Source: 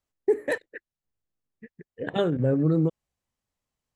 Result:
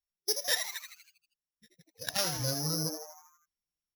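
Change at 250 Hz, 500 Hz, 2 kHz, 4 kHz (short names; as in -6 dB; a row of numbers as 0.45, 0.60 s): -15.0, -14.0, -2.0, +12.0 dB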